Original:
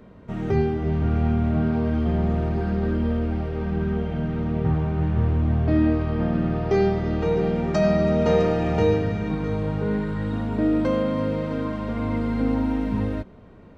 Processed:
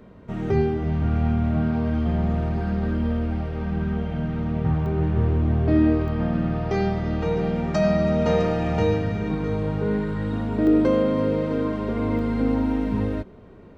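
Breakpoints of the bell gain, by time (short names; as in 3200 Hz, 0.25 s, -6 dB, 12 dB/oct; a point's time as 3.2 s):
bell 390 Hz 0.43 oct
+1 dB
from 0.84 s -6 dB
from 4.86 s +6 dB
from 6.08 s -6 dB
from 9.15 s +3 dB
from 10.67 s +13 dB
from 12.19 s +5.5 dB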